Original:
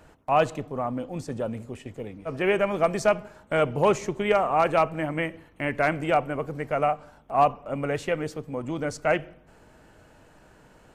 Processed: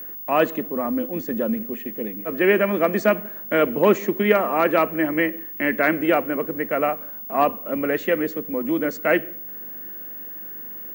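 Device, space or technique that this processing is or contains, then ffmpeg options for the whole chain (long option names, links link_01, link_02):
old television with a line whistle: -af "highpass=frequency=190:width=0.5412,highpass=frequency=190:width=1.3066,equalizer=frequency=220:width_type=q:width=4:gain=10,equalizer=frequency=330:width_type=q:width=4:gain=7,equalizer=frequency=500:width_type=q:width=4:gain=3,equalizer=frequency=790:width_type=q:width=4:gain=-6,equalizer=frequency=1800:width_type=q:width=4:gain=8,equalizer=frequency=5300:width_type=q:width=4:gain=-7,lowpass=frequency=6800:width=0.5412,lowpass=frequency=6800:width=1.3066,aeval=exprs='val(0)+0.0178*sin(2*PI*15625*n/s)':channel_layout=same,volume=2.5dB"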